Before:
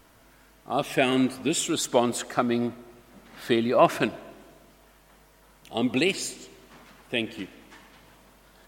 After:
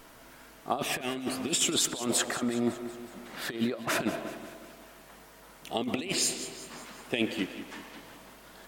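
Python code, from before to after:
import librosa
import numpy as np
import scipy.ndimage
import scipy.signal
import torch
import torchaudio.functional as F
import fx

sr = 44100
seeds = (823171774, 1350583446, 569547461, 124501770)

p1 = fx.peak_eq(x, sr, hz=69.0, db=-9.0, octaves=1.8)
p2 = fx.over_compress(p1, sr, threshold_db=-29.0, ratio=-0.5)
y = p2 + fx.echo_feedback(p2, sr, ms=185, feedback_pct=57, wet_db=-14.0, dry=0)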